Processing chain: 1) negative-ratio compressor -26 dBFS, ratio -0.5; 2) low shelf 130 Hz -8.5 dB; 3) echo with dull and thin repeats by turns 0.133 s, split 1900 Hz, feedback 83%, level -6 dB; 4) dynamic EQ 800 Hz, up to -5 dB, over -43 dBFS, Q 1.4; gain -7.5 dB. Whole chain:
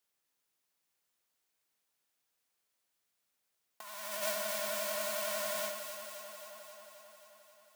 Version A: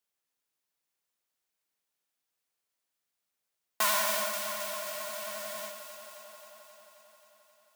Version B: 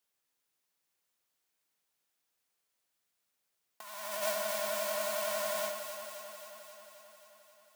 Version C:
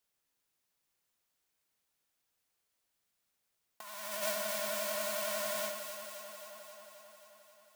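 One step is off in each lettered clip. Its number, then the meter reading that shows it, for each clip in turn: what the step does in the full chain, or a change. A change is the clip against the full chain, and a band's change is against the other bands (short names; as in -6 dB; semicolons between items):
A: 1, crest factor change +3.5 dB; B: 4, 500 Hz band +3.0 dB; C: 2, 250 Hz band +2.5 dB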